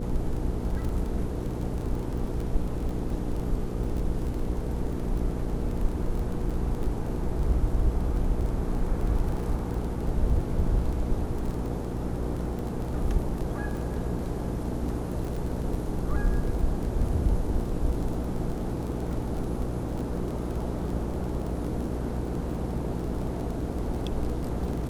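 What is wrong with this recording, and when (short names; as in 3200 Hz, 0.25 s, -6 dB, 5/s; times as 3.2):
crackle 24/s -32 dBFS
hum 60 Hz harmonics 8 -33 dBFS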